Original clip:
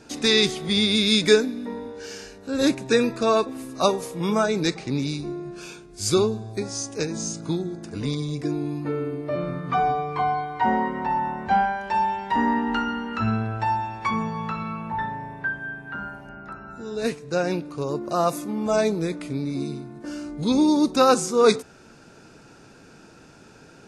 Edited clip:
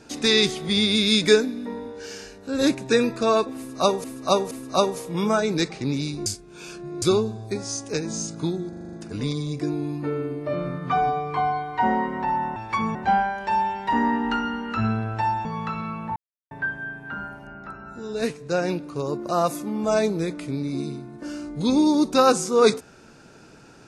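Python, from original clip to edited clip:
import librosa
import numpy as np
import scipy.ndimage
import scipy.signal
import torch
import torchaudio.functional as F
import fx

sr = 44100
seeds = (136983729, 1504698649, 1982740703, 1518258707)

y = fx.edit(x, sr, fx.repeat(start_s=3.57, length_s=0.47, count=3),
    fx.reverse_span(start_s=5.32, length_s=0.76),
    fx.stutter(start_s=7.75, slice_s=0.04, count=7),
    fx.move(start_s=13.88, length_s=0.39, to_s=11.38),
    fx.silence(start_s=14.98, length_s=0.35), tone=tone)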